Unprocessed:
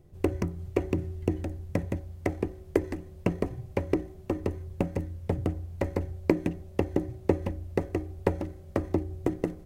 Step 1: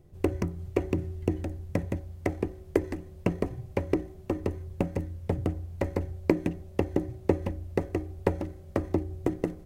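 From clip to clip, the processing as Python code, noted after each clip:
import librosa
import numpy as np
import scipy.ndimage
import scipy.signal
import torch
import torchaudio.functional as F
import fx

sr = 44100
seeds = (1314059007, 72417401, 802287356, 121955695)

y = x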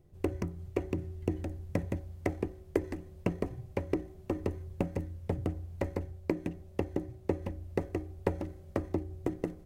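y = fx.rider(x, sr, range_db=10, speed_s=0.5)
y = F.gain(torch.from_numpy(y), -5.0).numpy()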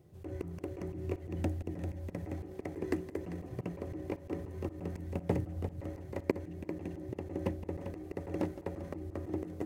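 y = scipy.signal.sosfilt(scipy.signal.butter(2, 100.0, 'highpass', fs=sr, output='sos'), x)
y = fx.echo_multitap(y, sr, ms=(165, 349, 395), db=(-14.0, -10.5, -6.0))
y = fx.auto_swell(y, sr, attack_ms=131.0)
y = F.gain(torch.from_numpy(y), 4.0).numpy()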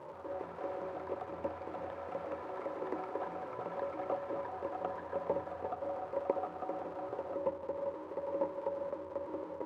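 y = x + 0.5 * 10.0 ** (-36.5 / 20.0) * np.sign(x)
y = fx.double_bandpass(y, sr, hz=720.0, octaves=0.72)
y = fx.echo_pitch(y, sr, ms=130, semitones=5, count=3, db_per_echo=-6.0)
y = F.gain(torch.from_numpy(y), 6.0).numpy()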